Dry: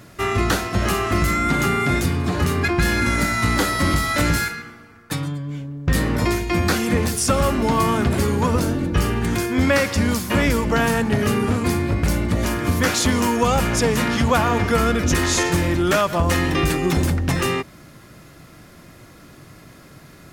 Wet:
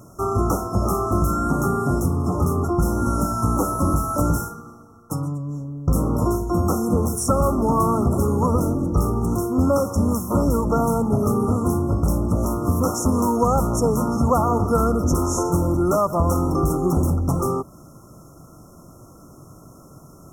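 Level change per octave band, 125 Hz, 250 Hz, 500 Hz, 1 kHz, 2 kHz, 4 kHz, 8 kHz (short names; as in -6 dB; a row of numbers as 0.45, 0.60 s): 0.0 dB, 0.0 dB, 0.0 dB, -0.5 dB, under -20 dB, -17.0 dB, -4.5 dB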